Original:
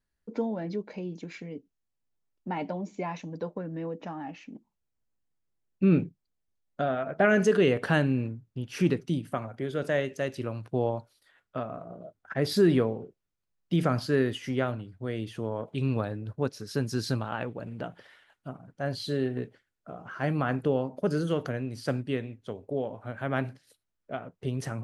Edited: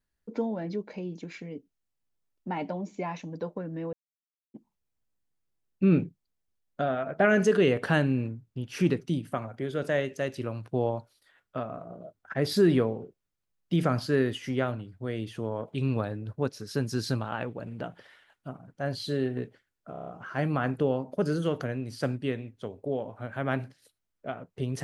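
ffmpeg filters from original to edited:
-filter_complex "[0:a]asplit=8[a][b][c][d][e][f][g][h];[a]atrim=end=3.93,asetpts=PTS-STARTPTS,afade=t=out:st=3.926:d=0.004:c=hsin[i];[b]atrim=start=3.93:end=4.54,asetpts=PTS-STARTPTS,volume=0[j];[c]atrim=start=4.54:end=19.952,asetpts=PTS-STARTPTS,afade=t=in:d=0.004:c=hsin[k];[d]atrim=start=19.918:end=19.952[l];[e]atrim=start=19.918:end=19.952[m];[f]atrim=start=19.918:end=19.952[n];[g]atrim=start=19.918:end=19.952[o];[h]atrim=start=19.918[p];[i][j][k]concat=n=3:v=0:a=1[q];[q][l]acrossfade=d=0.004:c1=hsin:c2=hsin[r];[r][m]acrossfade=d=0.004:c1=hsin:c2=hsin[s];[s][n]acrossfade=d=0.004:c1=hsin:c2=hsin[t];[t][o]acrossfade=d=0.004:c1=hsin:c2=hsin[u];[u][p]acrossfade=d=0.004:c1=hsin:c2=hsin"

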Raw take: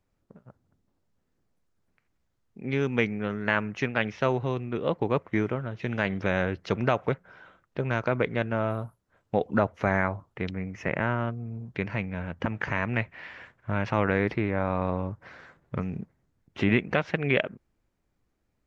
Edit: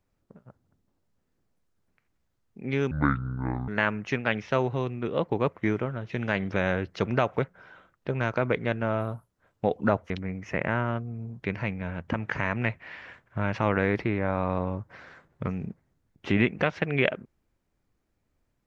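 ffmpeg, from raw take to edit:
-filter_complex "[0:a]asplit=4[a][b][c][d];[a]atrim=end=2.914[e];[b]atrim=start=2.91:end=3.38,asetpts=PTS-STARTPTS,asetrate=26901,aresample=44100[f];[c]atrim=start=3.376:end=9.802[g];[d]atrim=start=10.418[h];[e][f]acrossfade=d=0.004:c1=hsin:c2=hsin[i];[i][g]acrossfade=d=0.004:c1=hsin:c2=hsin[j];[j][h]acrossfade=d=0.004:c1=hsin:c2=hsin"

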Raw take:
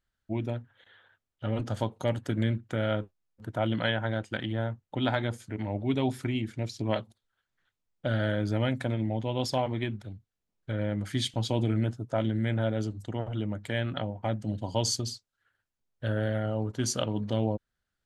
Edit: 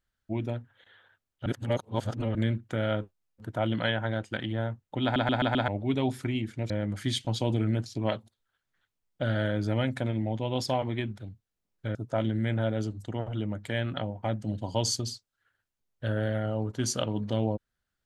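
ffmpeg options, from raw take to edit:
-filter_complex "[0:a]asplit=11[a][b][c][d][e][f][g][h][i][j][k];[a]atrim=end=1.462[l];[b]atrim=start=1.458:end=2.352,asetpts=PTS-STARTPTS,areverse[m];[c]atrim=start=2.348:end=5.162[n];[d]atrim=start=5.028:end=5.162[o];[e]atrim=start=5.028:end=5.162[p];[f]atrim=start=5.028:end=5.162[q];[g]atrim=start=5.028:end=5.162[r];[h]atrim=start=5.678:end=6.702[s];[i]atrim=start=10.788:end=11.952[t];[j]atrim=start=6.698:end=10.792[u];[k]atrim=start=11.948[v];[l][m]acrossfade=d=0.004:c1=hsin:c2=hsin[w];[w][n]acrossfade=d=0.004:c1=hsin:c2=hsin[x];[x][o]acrossfade=d=0.004:c1=hsin:c2=hsin[y];[y][p]acrossfade=d=0.004:c1=hsin:c2=hsin[z];[z][q]acrossfade=d=0.004:c1=hsin:c2=hsin[aa];[aa][r]acrossfade=d=0.004:c1=hsin:c2=hsin[ab];[ab][s]acrossfade=d=0.004:c1=hsin:c2=hsin[ac];[ac][t]acrossfade=d=0.004:c1=hsin:c2=hsin[ad];[ad][u]acrossfade=d=0.004:c1=hsin:c2=hsin[ae];[ae][v]acrossfade=d=0.004:c1=hsin:c2=hsin"

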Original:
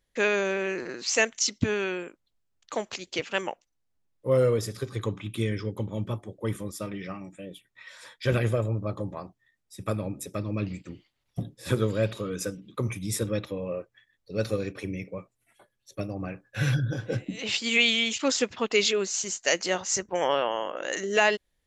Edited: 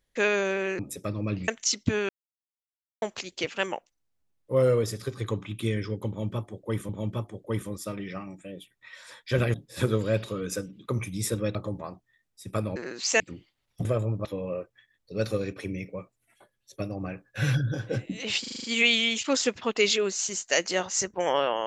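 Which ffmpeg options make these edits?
-filter_complex "[0:a]asplit=18[a][b][c][d][e][f][g][h][i][j][k][l][m][n][o][p][q][r];[a]atrim=end=0.792[s];[b]atrim=start=10.088:end=10.782[t];[c]atrim=start=1.228:end=1.84,asetpts=PTS-STARTPTS,afade=t=out:st=0.608:d=0.004:c=hsin[u];[d]atrim=start=1.84:end=2.77,asetpts=PTS-STARTPTS,volume=0[v];[e]atrim=start=2.77:end=6.642,asetpts=PTS-STARTPTS,afade=t=in:d=0.004:c=hsin[w];[f]atrim=start=5.828:end=8.482[x];[g]atrim=start=11.428:end=13.442[y];[h]atrim=start=8.878:end=10.092[z];[i]atrim=start=0.788:end=1.232[aa];[j]atrim=start=10.778:end=11.432[ab];[k]atrim=start=8.478:end=8.882[ac];[l]atrim=start=13.438:end=17.632[ad];[m]atrim=start=17.588:end=17.632[ae];[n]atrim=start=17.588:end=17.632[af];[o]atrim=start=17.588:end=17.632[ag];[p]atrim=start=17.588:end=17.632[ah];[q]atrim=start=17.588:end=17.632[ai];[r]atrim=start=17.588[aj];[s][t]acrossfade=d=0.004:c1=hsin:c2=hsin[ak];[u][v][w]concat=n=3:v=0:a=1[al];[ak][al]acrossfade=d=0.004:c1=hsin:c2=hsin[am];[am][x]acrossfade=d=0.004:c1=hsin:c2=hsin[an];[an][y]acrossfade=d=0.004:c1=hsin:c2=hsin[ao];[ao][z]acrossfade=d=0.004:c1=hsin:c2=hsin[ap];[ap][aa]acrossfade=d=0.004:c1=hsin:c2=hsin[aq];[aq][ab]acrossfade=d=0.004:c1=hsin:c2=hsin[ar];[ar][ac]acrossfade=d=0.004:c1=hsin:c2=hsin[as];[as][ad]acrossfade=d=0.004:c1=hsin:c2=hsin[at];[at][ae]acrossfade=d=0.004:c1=hsin:c2=hsin[au];[au][af]acrossfade=d=0.004:c1=hsin:c2=hsin[av];[av][ag]acrossfade=d=0.004:c1=hsin:c2=hsin[aw];[aw][ah]acrossfade=d=0.004:c1=hsin:c2=hsin[ax];[ax][ai]acrossfade=d=0.004:c1=hsin:c2=hsin[ay];[ay][aj]acrossfade=d=0.004:c1=hsin:c2=hsin"

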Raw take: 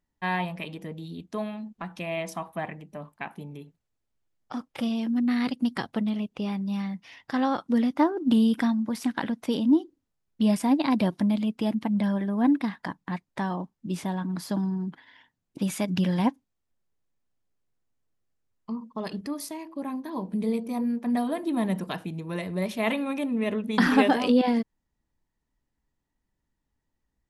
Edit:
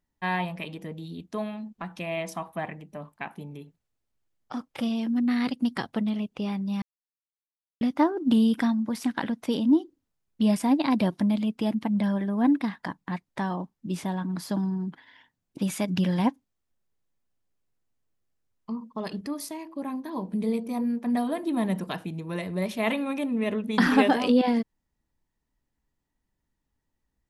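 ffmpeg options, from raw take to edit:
-filter_complex "[0:a]asplit=3[a][b][c];[a]atrim=end=6.82,asetpts=PTS-STARTPTS,afade=t=out:st=6.816:d=0.004:c=hsin[d];[b]atrim=start=6.82:end=7.81,asetpts=PTS-STARTPTS,volume=0[e];[c]atrim=start=7.81,asetpts=PTS-STARTPTS,afade=t=in:d=0.004:c=hsin[f];[d][e][f]concat=n=3:v=0:a=1"

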